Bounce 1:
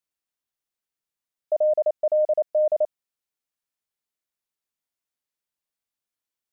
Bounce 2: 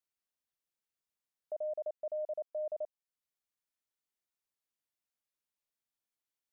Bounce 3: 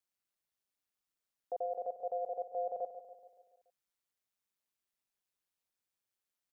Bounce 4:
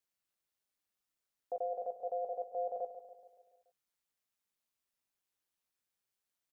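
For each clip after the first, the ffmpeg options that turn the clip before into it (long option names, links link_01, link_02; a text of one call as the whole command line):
ffmpeg -i in.wav -af "alimiter=level_in=3.5dB:limit=-24dB:level=0:latency=1:release=442,volume=-3.5dB,volume=-5dB" out.wav
ffmpeg -i in.wav -af "aeval=exprs='val(0)*sin(2*PI*95*n/s)':channel_layout=same,aecho=1:1:142|284|426|568|710|852:0.282|0.158|0.0884|0.0495|0.0277|0.0155,volume=3.5dB" out.wav
ffmpeg -i in.wav -filter_complex "[0:a]asplit=2[link_01][link_02];[link_02]adelay=16,volume=-8.5dB[link_03];[link_01][link_03]amix=inputs=2:normalize=0" out.wav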